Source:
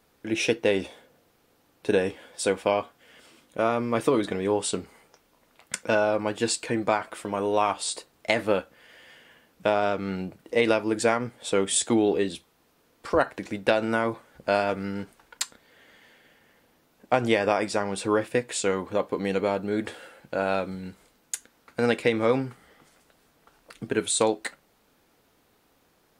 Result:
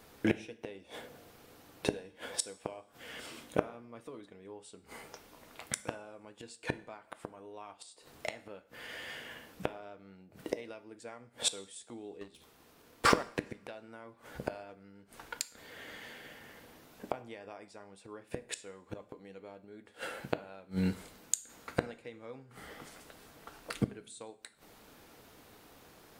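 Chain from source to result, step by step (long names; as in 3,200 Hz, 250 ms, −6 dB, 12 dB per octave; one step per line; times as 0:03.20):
gate with flip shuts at −23 dBFS, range −32 dB
0:12.21–0:13.27: leveller curve on the samples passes 2
coupled-rooms reverb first 0.52 s, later 2.5 s, from −26 dB, DRR 12.5 dB
level +7 dB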